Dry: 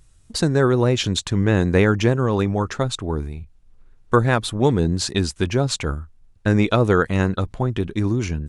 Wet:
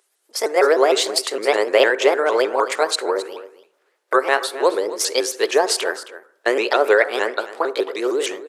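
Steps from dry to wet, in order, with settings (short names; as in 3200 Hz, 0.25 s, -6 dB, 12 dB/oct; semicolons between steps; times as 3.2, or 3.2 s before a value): repeated pitch sweeps +5.5 st, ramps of 0.153 s; elliptic high-pass 390 Hz, stop band 70 dB; AGC gain up to 11.5 dB; echo 0.267 s -15 dB; on a send at -17 dB: reverb RT60 0.70 s, pre-delay 42 ms; on the sum: gain -1 dB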